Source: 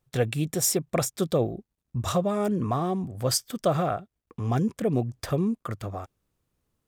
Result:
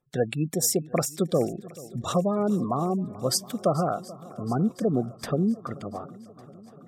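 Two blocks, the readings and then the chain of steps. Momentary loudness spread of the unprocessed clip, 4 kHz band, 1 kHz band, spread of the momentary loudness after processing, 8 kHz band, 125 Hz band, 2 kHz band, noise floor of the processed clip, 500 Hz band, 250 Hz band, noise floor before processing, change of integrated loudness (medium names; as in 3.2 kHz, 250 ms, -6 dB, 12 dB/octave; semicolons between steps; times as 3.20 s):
11 LU, -0.5 dB, 0.0 dB, 13 LU, 0.0 dB, -1.5 dB, -2.5 dB, -49 dBFS, +0.5 dB, +1.5 dB, -82 dBFS, +0.5 dB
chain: spectral gate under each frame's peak -25 dB strong; resonant low shelf 130 Hz -8 dB, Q 1.5; on a send: shuffle delay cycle 722 ms, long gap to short 1.5:1, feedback 55%, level -20 dB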